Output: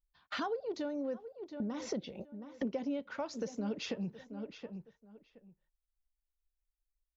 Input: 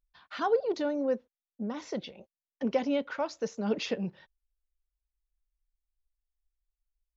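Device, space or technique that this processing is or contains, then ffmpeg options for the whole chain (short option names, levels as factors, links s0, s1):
ASMR close-microphone chain: -filter_complex "[0:a]agate=range=0.178:threshold=0.00316:ratio=16:detection=peak,asettb=1/sr,asplit=3[s0][s1][s2];[s0]atrim=end=1.804[s3];[s1]atrim=start=1.8:end=3,asetpts=PTS-STARTPTS,afade=t=in:d=0.004:c=qsin,afade=t=out:st=1.196:d=0.004:c=qsin,equalizer=f=310:w=0.55:g=5.5[s4];[s2]atrim=start=2.996[s5];[s3][s4]acrossfade=d=0.004:c1=hsin:c2=qsin[s6];[s6][s5]acrossfade=d=0.004:c1=qsin:c2=hsin,lowshelf=f=220:g=8,asplit=2[s7][s8];[s8]adelay=721,lowpass=f=3100:p=1,volume=0.1,asplit=2[s9][s10];[s10]adelay=721,lowpass=f=3100:p=1,volume=0.19[s11];[s7][s9][s11]amix=inputs=3:normalize=0,acompressor=threshold=0.01:ratio=5,highshelf=f=6500:g=6,volume=1.58"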